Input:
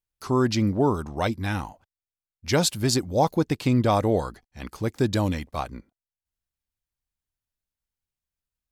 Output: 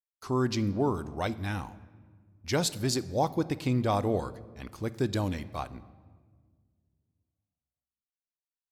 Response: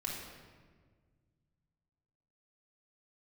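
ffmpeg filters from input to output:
-filter_complex "[0:a]agate=range=0.0631:threshold=0.00355:ratio=16:detection=peak,asplit=2[s0][s1];[1:a]atrim=start_sample=2205[s2];[s1][s2]afir=irnorm=-1:irlink=0,volume=0.188[s3];[s0][s3]amix=inputs=2:normalize=0,volume=0.447"

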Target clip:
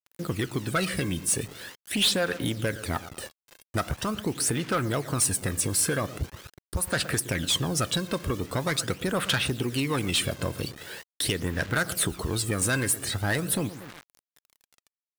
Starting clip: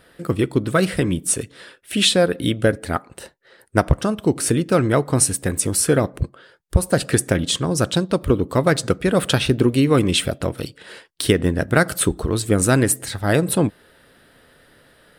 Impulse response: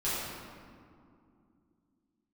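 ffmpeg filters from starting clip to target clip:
-filter_complex "[0:a]highpass=67,lowshelf=f=120:g=6.5,asplit=2[s0][s1];[s1]adelay=117,lowpass=f=1700:p=1,volume=0.106,asplit=2[s2][s3];[s3]adelay=117,lowpass=f=1700:p=1,volume=0.44,asplit=2[s4][s5];[s5]adelay=117,lowpass=f=1700:p=1,volume=0.44[s6];[s2][s4][s6]amix=inputs=3:normalize=0[s7];[s0][s7]amix=inputs=2:normalize=0,acrusher=bits=6:mix=0:aa=0.000001,acrossover=split=1000[s8][s9];[s8]acompressor=threshold=0.0794:ratio=6[s10];[s9]aphaser=in_gain=1:out_gain=1:delay=1.9:decay=0.58:speed=0.43:type=sinusoidal[s11];[s10][s11]amix=inputs=2:normalize=0,asoftclip=type=tanh:threshold=0.158,volume=0.75"

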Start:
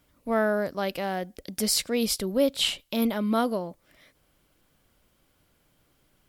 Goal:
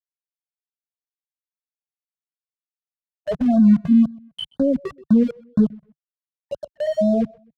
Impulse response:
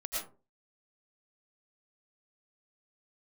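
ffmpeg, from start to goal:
-filter_complex "[0:a]areverse,afftfilt=real='re*gte(hypot(re,im),0.398)':imag='im*gte(hypot(re,im),0.398)':win_size=1024:overlap=0.75,aeval=exprs='val(0)*gte(abs(val(0)),0.0158)':c=same,highpass=62,adynamicequalizer=threshold=0.00398:dfrequency=150:dqfactor=2.4:tfrequency=150:tqfactor=2.4:attack=5:release=100:ratio=0.375:range=3.5:mode=boostabove:tftype=bell,dynaudnorm=f=270:g=7:m=1.5,alimiter=limit=0.0794:level=0:latency=1:release=105,acontrast=74,aemphasis=mode=reproduction:type=riaa,atempo=0.83,asplit=2[s0][s1];[s1]adelay=128,lowpass=f=3400:p=1,volume=0.0708,asplit=2[s2][s3];[s3]adelay=128,lowpass=f=3400:p=1,volume=0.3[s4];[s2][s4]amix=inputs=2:normalize=0[s5];[s0][s5]amix=inputs=2:normalize=0,afftfilt=real='re*(1-between(b*sr/1024,260*pow(2600/260,0.5+0.5*sin(2*PI*2*pts/sr))/1.41,260*pow(2600/260,0.5+0.5*sin(2*PI*2*pts/sr))*1.41))':imag='im*(1-between(b*sr/1024,260*pow(2600/260,0.5+0.5*sin(2*PI*2*pts/sr))/1.41,260*pow(2600/260,0.5+0.5*sin(2*PI*2*pts/sr))*1.41))':win_size=1024:overlap=0.75"

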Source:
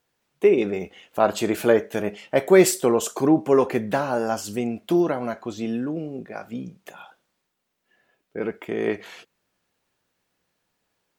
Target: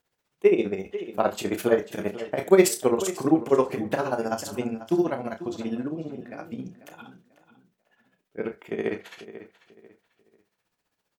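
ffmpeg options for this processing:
-filter_complex "[0:a]tremolo=f=15:d=0.94,asplit=2[s0][s1];[s1]adelay=31,volume=0.355[s2];[s0][s2]amix=inputs=2:normalize=0,asplit=2[s3][s4];[s4]adelay=492,lowpass=f=4100:p=1,volume=0.2,asplit=2[s5][s6];[s6]adelay=492,lowpass=f=4100:p=1,volume=0.3,asplit=2[s7][s8];[s8]adelay=492,lowpass=f=4100:p=1,volume=0.3[s9];[s3][s5][s7][s9]amix=inputs=4:normalize=0"

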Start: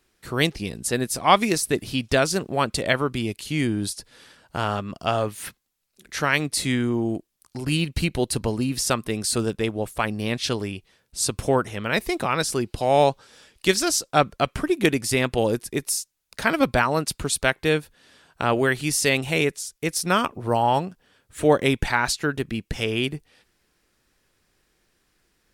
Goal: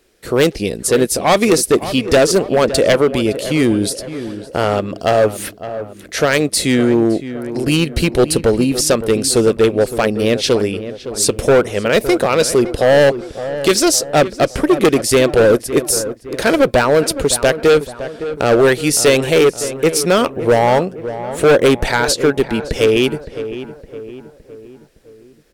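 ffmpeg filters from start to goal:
-filter_complex "[0:a]equalizer=f=125:t=o:w=1:g=-4,equalizer=f=500:t=o:w=1:g=10,equalizer=f=1000:t=o:w=1:g=-5,asoftclip=type=hard:threshold=0.168,asplit=2[s0][s1];[s1]adelay=563,lowpass=f=1800:p=1,volume=0.251,asplit=2[s2][s3];[s3]adelay=563,lowpass=f=1800:p=1,volume=0.51,asplit=2[s4][s5];[s5]adelay=563,lowpass=f=1800:p=1,volume=0.51,asplit=2[s6][s7];[s7]adelay=563,lowpass=f=1800:p=1,volume=0.51,asplit=2[s8][s9];[s9]adelay=563,lowpass=f=1800:p=1,volume=0.51[s10];[s2][s4][s6][s8][s10]amix=inputs=5:normalize=0[s11];[s0][s11]amix=inputs=2:normalize=0,volume=2.66"

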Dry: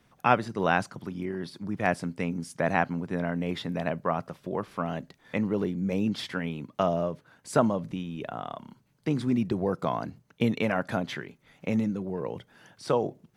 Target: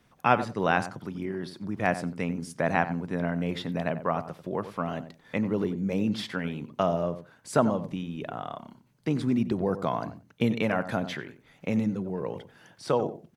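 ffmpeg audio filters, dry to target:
-filter_complex "[0:a]asplit=2[s0][s1];[s1]adelay=92,lowpass=f=1400:p=1,volume=0.282,asplit=2[s2][s3];[s3]adelay=92,lowpass=f=1400:p=1,volume=0.18[s4];[s0][s2][s4]amix=inputs=3:normalize=0"

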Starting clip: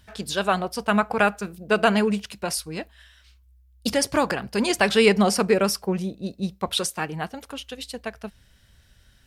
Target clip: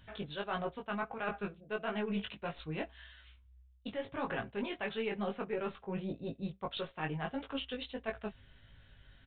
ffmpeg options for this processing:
-af "aecho=1:1:7.4:0.3,areverse,acompressor=threshold=0.0251:ratio=10,areverse,flanger=delay=18:depth=2.3:speed=1.6,aeval=exprs='0.075*(cos(1*acos(clip(val(0)/0.075,-1,1)))-cos(1*PI/2))+0.00376*(cos(4*acos(clip(val(0)/0.075,-1,1)))-cos(4*PI/2))':c=same,aresample=8000,aresample=44100,volume=1.12"

